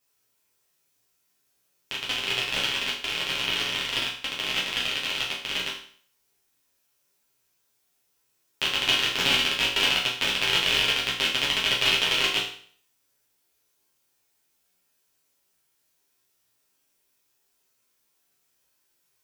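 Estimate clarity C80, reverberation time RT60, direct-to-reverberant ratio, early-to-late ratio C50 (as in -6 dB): 9.5 dB, 0.50 s, -5.5 dB, 5.5 dB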